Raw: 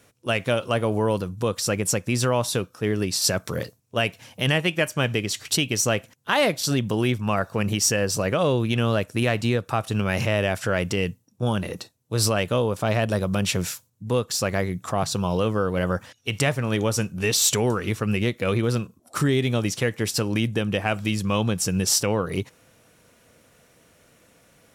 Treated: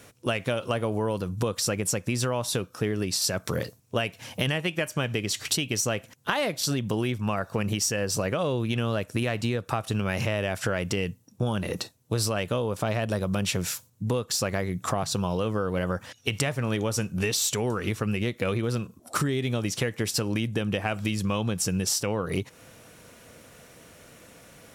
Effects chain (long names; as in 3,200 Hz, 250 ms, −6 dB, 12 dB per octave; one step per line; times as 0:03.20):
downward compressor 6 to 1, threshold −31 dBFS, peak gain reduction 14 dB
level +6.5 dB